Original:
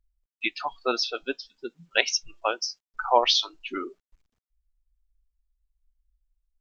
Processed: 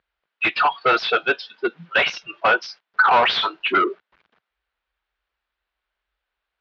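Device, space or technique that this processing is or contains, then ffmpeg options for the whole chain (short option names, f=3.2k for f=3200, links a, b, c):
overdrive pedal into a guitar cabinet: -filter_complex "[0:a]asplit=2[a][b];[b]highpass=f=720:p=1,volume=34dB,asoftclip=type=tanh:threshold=-3dB[c];[a][c]amix=inputs=2:normalize=0,lowpass=f=2.3k:p=1,volume=-6dB,highpass=93,equalizer=f=110:t=q:w=4:g=-10,equalizer=f=270:t=q:w=4:g=-7,equalizer=f=1.5k:t=q:w=4:g=5,lowpass=f=3.8k:w=0.5412,lowpass=f=3.8k:w=1.3066,volume=-4.5dB"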